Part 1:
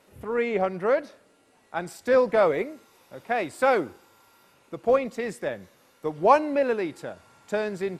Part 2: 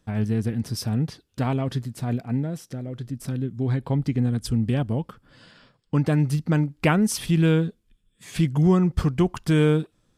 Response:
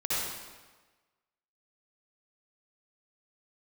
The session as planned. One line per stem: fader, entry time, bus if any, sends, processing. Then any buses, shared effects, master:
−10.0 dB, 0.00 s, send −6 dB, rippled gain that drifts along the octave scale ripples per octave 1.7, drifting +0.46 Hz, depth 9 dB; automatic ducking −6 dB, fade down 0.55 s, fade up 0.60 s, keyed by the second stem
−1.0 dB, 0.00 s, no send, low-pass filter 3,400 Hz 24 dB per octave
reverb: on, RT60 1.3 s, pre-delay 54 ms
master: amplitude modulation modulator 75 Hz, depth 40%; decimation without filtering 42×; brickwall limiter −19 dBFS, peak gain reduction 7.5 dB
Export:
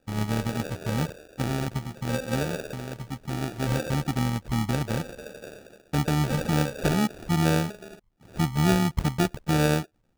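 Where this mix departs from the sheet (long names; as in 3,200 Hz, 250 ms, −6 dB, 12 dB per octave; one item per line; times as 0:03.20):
stem 1: send −6 dB → −12 dB
master: missing brickwall limiter −19 dBFS, peak gain reduction 7.5 dB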